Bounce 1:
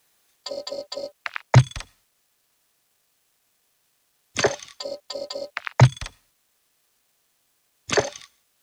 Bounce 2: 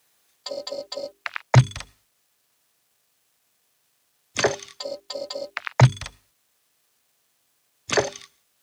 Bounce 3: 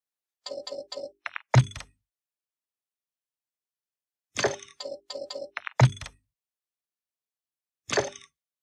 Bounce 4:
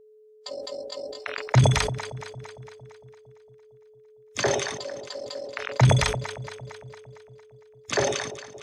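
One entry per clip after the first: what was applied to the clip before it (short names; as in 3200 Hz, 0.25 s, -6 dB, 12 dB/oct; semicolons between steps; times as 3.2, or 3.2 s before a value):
HPF 55 Hz; notches 50/100/150/200/250/300/350/400 Hz
spectral noise reduction 25 dB; gain -4.5 dB
echo with dull and thin repeats by turns 0.114 s, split 810 Hz, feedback 82%, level -13.5 dB; whine 430 Hz -51 dBFS; sustainer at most 47 dB/s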